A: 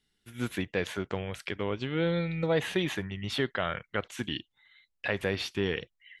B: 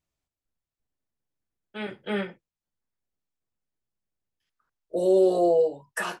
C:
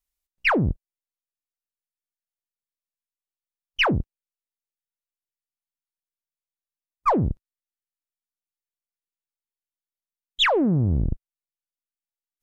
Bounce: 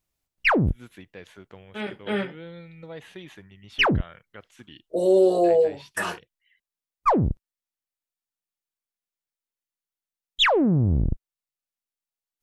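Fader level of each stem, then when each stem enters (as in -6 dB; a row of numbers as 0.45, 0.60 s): -13.0, +2.0, +0.5 dB; 0.40, 0.00, 0.00 s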